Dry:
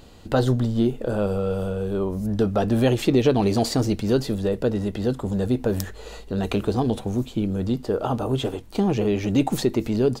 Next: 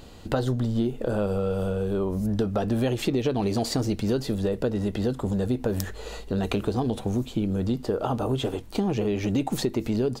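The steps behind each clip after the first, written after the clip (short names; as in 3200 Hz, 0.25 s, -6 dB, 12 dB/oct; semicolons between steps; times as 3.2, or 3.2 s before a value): compressor 4:1, threshold -24 dBFS, peak gain reduction 9.5 dB; gain +1.5 dB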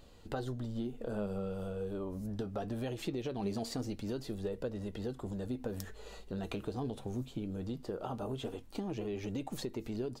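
flange 0.21 Hz, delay 1.6 ms, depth 6.1 ms, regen +68%; gain -8 dB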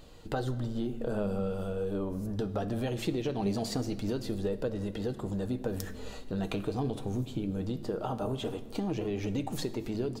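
shoebox room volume 2000 m³, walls mixed, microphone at 0.53 m; gain +5 dB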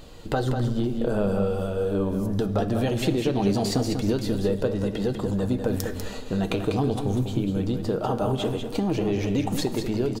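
echo 0.195 s -7 dB; gain +7.5 dB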